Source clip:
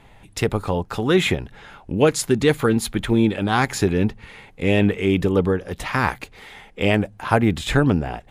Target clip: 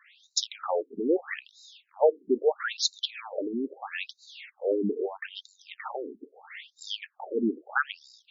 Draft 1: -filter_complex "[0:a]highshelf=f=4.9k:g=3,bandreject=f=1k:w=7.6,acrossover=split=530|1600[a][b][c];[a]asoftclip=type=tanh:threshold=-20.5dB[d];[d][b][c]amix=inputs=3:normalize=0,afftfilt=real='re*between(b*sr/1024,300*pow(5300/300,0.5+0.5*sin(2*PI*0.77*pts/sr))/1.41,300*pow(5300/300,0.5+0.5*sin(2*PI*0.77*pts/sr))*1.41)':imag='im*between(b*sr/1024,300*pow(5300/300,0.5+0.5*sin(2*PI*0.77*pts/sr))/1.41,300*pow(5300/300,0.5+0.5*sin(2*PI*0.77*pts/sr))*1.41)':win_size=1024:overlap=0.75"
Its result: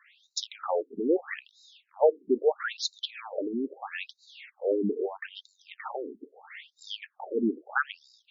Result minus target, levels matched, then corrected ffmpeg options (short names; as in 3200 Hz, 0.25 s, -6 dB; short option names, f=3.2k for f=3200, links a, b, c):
8000 Hz band -6.0 dB
-filter_complex "[0:a]highshelf=f=4.9k:g=13.5,bandreject=f=1k:w=7.6,acrossover=split=530|1600[a][b][c];[a]asoftclip=type=tanh:threshold=-20.5dB[d];[d][b][c]amix=inputs=3:normalize=0,afftfilt=real='re*between(b*sr/1024,300*pow(5300/300,0.5+0.5*sin(2*PI*0.77*pts/sr))/1.41,300*pow(5300/300,0.5+0.5*sin(2*PI*0.77*pts/sr))*1.41)':imag='im*between(b*sr/1024,300*pow(5300/300,0.5+0.5*sin(2*PI*0.77*pts/sr))/1.41,300*pow(5300/300,0.5+0.5*sin(2*PI*0.77*pts/sr))*1.41)':win_size=1024:overlap=0.75"